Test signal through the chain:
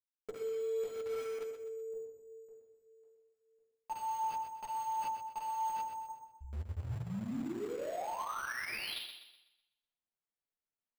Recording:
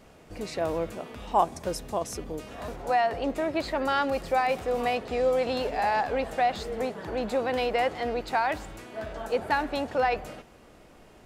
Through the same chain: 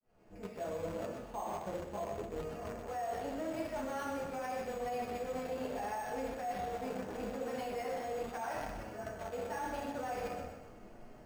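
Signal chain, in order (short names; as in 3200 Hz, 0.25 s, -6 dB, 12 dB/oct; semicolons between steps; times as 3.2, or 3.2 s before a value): opening faded in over 0.55 s; high shelf 9100 Hz -8.5 dB; shoebox room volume 180 m³, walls mixed, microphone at 1.4 m; careless resampling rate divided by 6×, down filtered, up hold; in parallel at -7 dB: bit-crush 4-bit; on the sum: limiter -12.5 dBFS; flange 0.81 Hz, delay 7.8 ms, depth 3.8 ms, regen -27%; high shelf 3800 Hz -8 dB; reverse; compressor 4:1, threshold -34 dBFS; reverse; thinning echo 0.125 s, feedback 40%, high-pass 160 Hz, level -8 dB; gain -4.5 dB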